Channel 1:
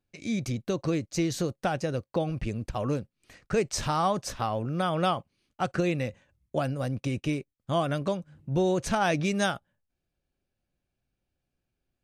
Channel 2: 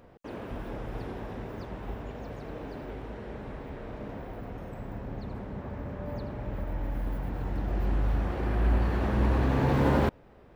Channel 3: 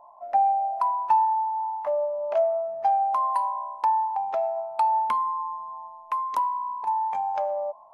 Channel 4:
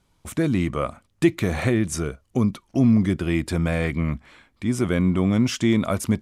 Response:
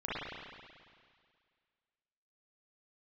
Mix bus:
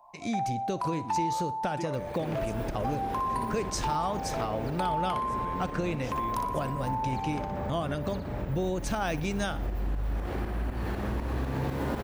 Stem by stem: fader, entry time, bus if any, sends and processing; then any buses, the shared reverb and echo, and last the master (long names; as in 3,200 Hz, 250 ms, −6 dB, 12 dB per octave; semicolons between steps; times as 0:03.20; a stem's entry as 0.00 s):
+1.0 dB, 0.00 s, no send, echo send −19 dB, no processing
−1.5 dB, 1.95 s, no send, echo send −9.5 dB, high-shelf EQ 6,400 Hz +11.5 dB; shaped tremolo saw up 4 Hz, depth 75%; envelope flattener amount 50%
−3.0 dB, 0.00 s, no send, echo send −4 dB, tilt shelving filter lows −9 dB, about 1,200 Hz
−18.0 dB, 0.55 s, no send, no echo send, no processing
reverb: not used
echo: repeating echo 60 ms, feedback 36%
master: downward compressor 2.5 to 1, threshold −29 dBFS, peak gain reduction 8.5 dB